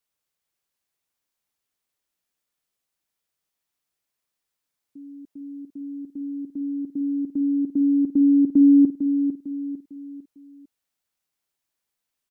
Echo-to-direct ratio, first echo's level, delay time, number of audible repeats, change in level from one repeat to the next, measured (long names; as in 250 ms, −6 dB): −8.0 dB, −8.5 dB, 451 ms, 4, −8.0 dB